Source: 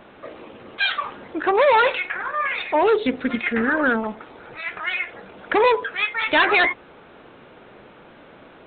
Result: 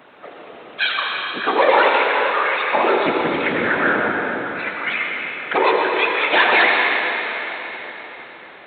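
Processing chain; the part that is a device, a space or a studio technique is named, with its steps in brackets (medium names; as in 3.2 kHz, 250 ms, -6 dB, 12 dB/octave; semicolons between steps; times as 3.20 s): whispering ghost (whisper effect; high-pass 440 Hz 6 dB/octave; reverberation RT60 4.1 s, pre-delay 76 ms, DRR -0.5 dB); trim +1.5 dB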